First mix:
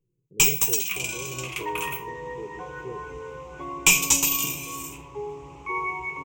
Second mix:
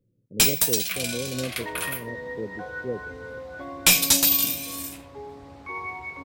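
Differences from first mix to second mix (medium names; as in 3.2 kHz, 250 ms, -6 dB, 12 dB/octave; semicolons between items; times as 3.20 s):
speech +9.5 dB; first sound +4.0 dB; master: remove rippled EQ curve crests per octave 0.72, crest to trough 16 dB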